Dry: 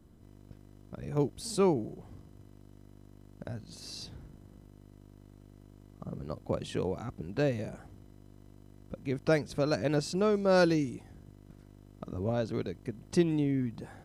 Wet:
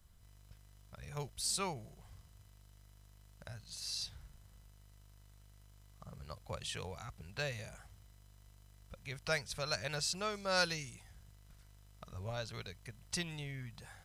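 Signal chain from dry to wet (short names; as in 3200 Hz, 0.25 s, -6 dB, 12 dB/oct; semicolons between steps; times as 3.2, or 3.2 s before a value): passive tone stack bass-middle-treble 10-0-10; gain +4.5 dB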